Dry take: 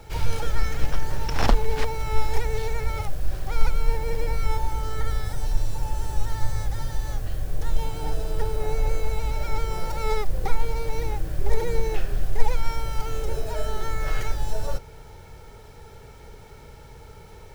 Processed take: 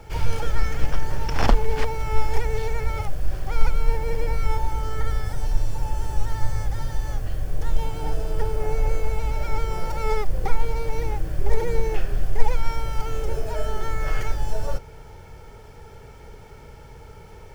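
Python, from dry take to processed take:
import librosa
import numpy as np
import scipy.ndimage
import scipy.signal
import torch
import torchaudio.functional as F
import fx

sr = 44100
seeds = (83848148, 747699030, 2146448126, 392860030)

y = fx.high_shelf(x, sr, hz=5600.0, db=-5.0)
y = fx.notch(y, sr, hz=3900.0, q=10.0)
y = y * librosa.db_to_amplitude(1.5)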